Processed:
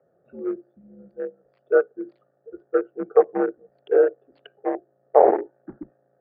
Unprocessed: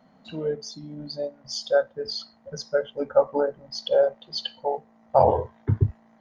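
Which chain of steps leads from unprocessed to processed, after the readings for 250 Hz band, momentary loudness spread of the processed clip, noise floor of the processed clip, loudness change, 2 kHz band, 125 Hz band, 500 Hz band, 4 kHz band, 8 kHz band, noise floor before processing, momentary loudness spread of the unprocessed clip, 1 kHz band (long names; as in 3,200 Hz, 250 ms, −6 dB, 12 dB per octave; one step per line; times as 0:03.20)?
+5.5 dB, 17 LU, −67 dBFS, +3.5 dB, +2.5 dB, below −20 dB, +2.5 dB, below −25 dB, can't be measured, −58 dBFS, 13 LU, +1.0 dB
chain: adaptive Wiener filter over 41 samples
single-sideband voice off tune −91 Hz 410–2,100 Hz
level +4 dB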